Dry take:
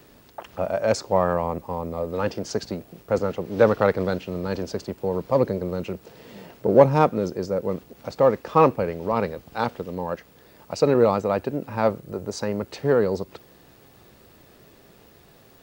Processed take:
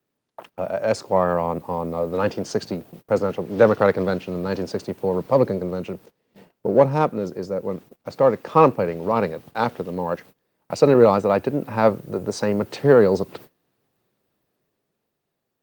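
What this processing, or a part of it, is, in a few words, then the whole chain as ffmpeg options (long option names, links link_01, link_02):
video call: -af "highpass=frequency=100:width=0.5412,highpass=frequency=100:width=1.3066,dynaudnorm=framelen=160:gausssize=17:maxgain=14.5dB,agate=range=-24dB:threshold=-40dB:ratio=16:detection=peak,volume=-1dB" -ar 48000 -c:a libopus -b:a 32k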